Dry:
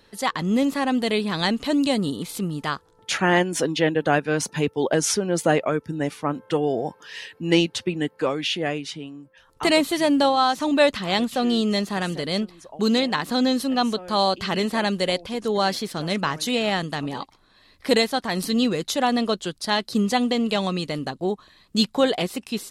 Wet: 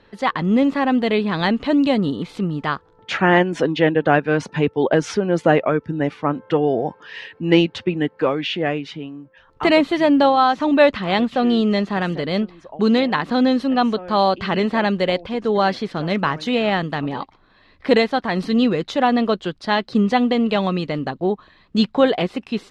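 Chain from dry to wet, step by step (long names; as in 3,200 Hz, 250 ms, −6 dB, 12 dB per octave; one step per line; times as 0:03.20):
low-pass filter 2,700 Hz 12 dB per octave
level +4.5 dB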